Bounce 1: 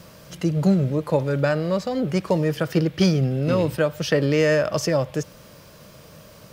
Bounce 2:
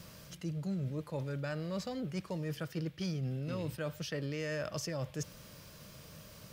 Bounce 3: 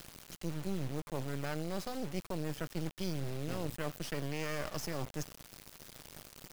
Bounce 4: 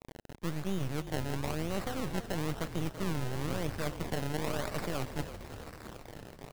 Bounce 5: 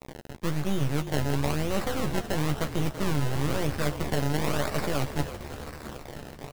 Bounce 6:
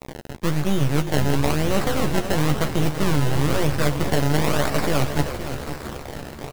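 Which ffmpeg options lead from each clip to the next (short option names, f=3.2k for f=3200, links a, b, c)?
-af "equalizer=f=590:t=o:w=2.7:g=-6.5,areverse,acompressor=threshold=-31dB:ratio=5,areverse,volume=-4dB"
-af "acrusher=bits=5:dc=4:mix=0:aa=0.000001,volume=2.5dB"
-filter_complex "[0:a]acrusher=samples=26:mix=1:aa=0.000001:lfo=1:lforange=26:lforate=1,asplit=9[a][b][c][d][e][f][g][h][i];[b]adelay=333,afreqshift=-38,volume=-12dB[j];[c]adelay=666,afreqshift=-76,volume=-15.7dB[k];[d]adelay=999,afreqshift=-114,volume=-19.5dB[l];[e]adelay=1332,afreqshift=-152,volume=-23.2dB[m];[f]adelay=1665,afreqshift=-190,volume=-27dB[n];[g]adelay=1998,afreqshift=-228,volume=-30.7dB[o];[h]adelay=2331,afreqshift=-266,volume=-34.5dB[p];[i]adelay=2664,afreqshift=-304,volume=-38.2dB[q];[a][j][k][l][m][n][o][p][q]amix=inputs=9:normalize=0,volume=3dB"
-filter_complex "[0:a]asplit=2[a][b];[b]adelay=14,volume=-7dB[c];[a][c]amix=inputs=2:normalize=0,volume=6dB"
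-af "aecho=1:1:518:0.282,volume=6.5dB"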